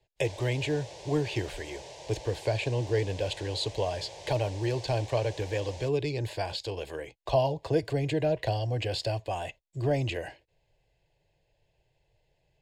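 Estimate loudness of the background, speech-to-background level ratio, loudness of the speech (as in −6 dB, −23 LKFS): −45.0 LKFS, 14.0 dB, −31.0 LKFS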